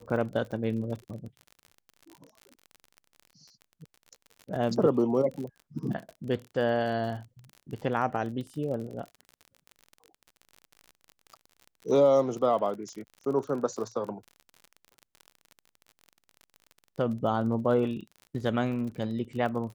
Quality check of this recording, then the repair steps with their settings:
crackle 42/s -37 dBFS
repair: de-click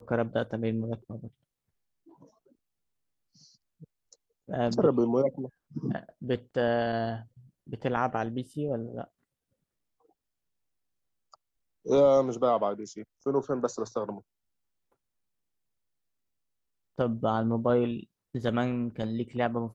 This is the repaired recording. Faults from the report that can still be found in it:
none

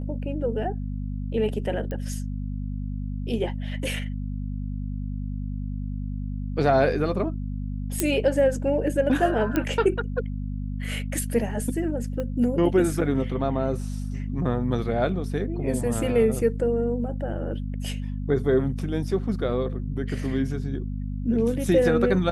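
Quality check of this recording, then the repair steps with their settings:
hum 50 Hz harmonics 5 -30 dBFS
1.91 pop -21 dBFS
8 pop -6 dBFS
9.56 pop -11 dBFS
12.2 pop -19 dBFS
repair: de-click; de-hum 50 Hz, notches 5

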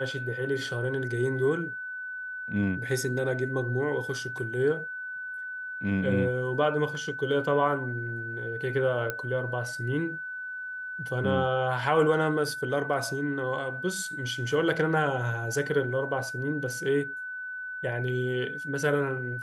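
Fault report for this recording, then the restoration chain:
tone 1500 Hz -34 dBFS
9.1 pop -15 dBFS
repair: de-click; notch 1500 Hz, Q 30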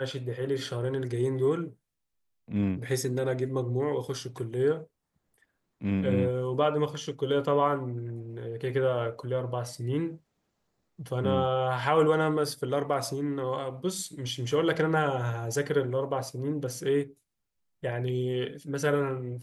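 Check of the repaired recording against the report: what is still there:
none

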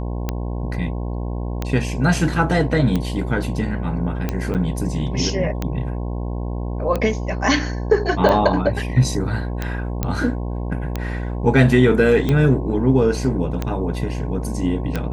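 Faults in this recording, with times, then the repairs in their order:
buzz 60 Hz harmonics 18 -25 dBFS
tick 45 rpm -9 dBFS
4.54–4.55 gap 8.3 ms
10.03 pop -8 dBFS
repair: de-click; de-hum 60 Hz, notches 18; interpolate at 4.54, 8.3 ms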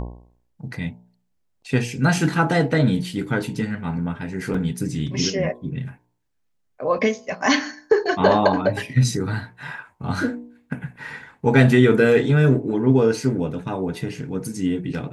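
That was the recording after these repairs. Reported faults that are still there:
none

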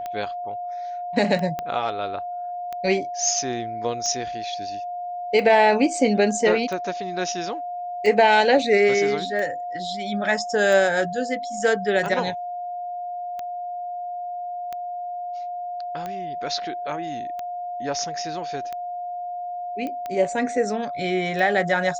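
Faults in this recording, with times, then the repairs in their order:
tick 45 rpm -18 dBFS
tone 710 Hz -28 dBFS
1.59 pop -15 dBFS
19.87 pop -19 dBFS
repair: de-click; notch 710 Hz, Q 30

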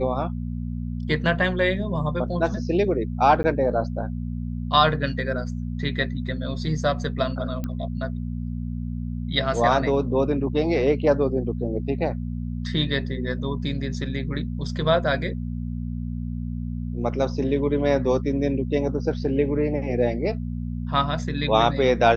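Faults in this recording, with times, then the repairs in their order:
hum 60 Hz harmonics 4 -29 dBFS
3.43–3.44 gap 10 ms
7.64 pop -17 dBFS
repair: de-click; de-hum 60 Hz, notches 4; interpolate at 3.43, 10 ms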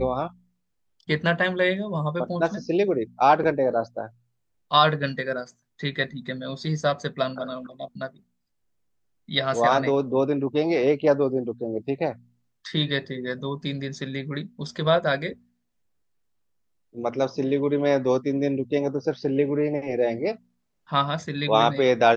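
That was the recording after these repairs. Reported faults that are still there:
none

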